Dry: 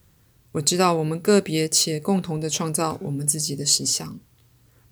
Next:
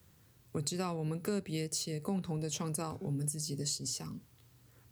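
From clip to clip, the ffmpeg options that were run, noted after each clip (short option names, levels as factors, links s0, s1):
-filter_complex "[0:a]highpass=66,acrossover=split=130[s0][s1];[s1]acompressor=threshold=0.0251:ratio=4[s2];[s0][s2]amix=inputs=2:normalize=0,volume=0.596"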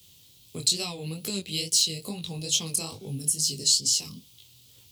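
-af "highshelf=f=2300:t=q:w=3:g=12.5,flanger=delay=18:depth=7:speed=2.3,volume=1.41"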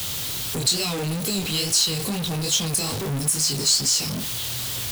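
-af "aeval=exprs='val(0)+0.5*0.0708*sgn(val(0))':c=same"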